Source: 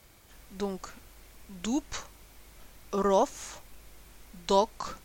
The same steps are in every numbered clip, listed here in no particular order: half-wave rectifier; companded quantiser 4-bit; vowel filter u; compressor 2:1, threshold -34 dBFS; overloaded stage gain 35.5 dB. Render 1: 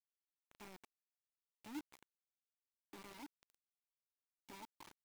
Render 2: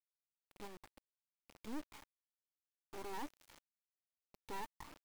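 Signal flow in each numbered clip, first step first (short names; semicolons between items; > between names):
half-wave rectifier > compressor > overloaded stage > vowel filter > companded quantiser; vowel filter > half-wave rectifier > compressor > companded quantiser > overloaded stage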